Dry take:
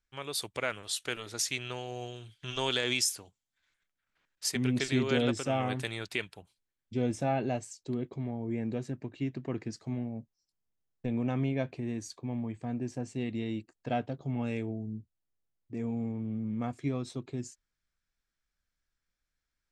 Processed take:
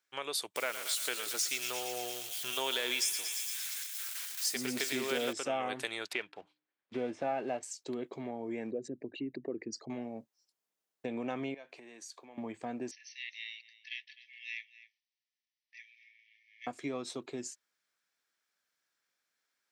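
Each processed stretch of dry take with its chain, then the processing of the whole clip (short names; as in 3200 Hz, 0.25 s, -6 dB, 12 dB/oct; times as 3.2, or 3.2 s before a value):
0.56–5.33 switching spikes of -32.5 dBFS + thinning echo 0.115 s, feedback 75%, high-pass 770 Hz, level -10.5 dB
6.13–7.63 block floating point 5-bit + LPF 2700 Hz + de-hum 151 Hz, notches 2
8.71–9.9 formant sharpening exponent 2 + mismatched tape noise reduction encoder only
11.54–12.38 HPF 790 Hz 6 dB/oct + compressor 4:1, threshold -51 dBFS
12.91–16.67 brick-wall FIR band-pass 1700–6200 Hz + echo 0.256 s -17.5 dB
whole clip: HPF 390 Hz 12 dB/oct; compressor 2:1, threshold -42 dBFS; gain +5.5 dB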